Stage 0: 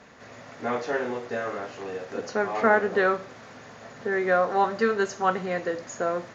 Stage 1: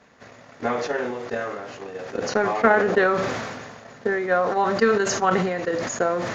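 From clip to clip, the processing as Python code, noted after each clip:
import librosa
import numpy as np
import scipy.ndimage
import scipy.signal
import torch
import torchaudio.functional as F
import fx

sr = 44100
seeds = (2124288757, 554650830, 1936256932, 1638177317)

y = fx.transient(x, sr, attack_db=12, sustain_db=-2)
y = fx.sustainer(y, sr, db_per_s=34.0)
y = y * 10.0 ** (-5.0 / 20.0)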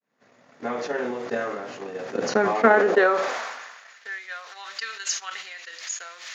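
y = fx.fade_in_head(x, sr, length_s=1.27)
y = fx.filter_sweep_highpass(y, sr, from_hz=180.0, to_hz=2900.0, start_s=2.5, end_s=4.22, q=1.1)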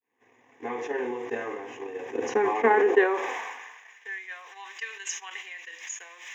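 y = fx.fixed_phaser(x, sr, hz=910.0, stages=8)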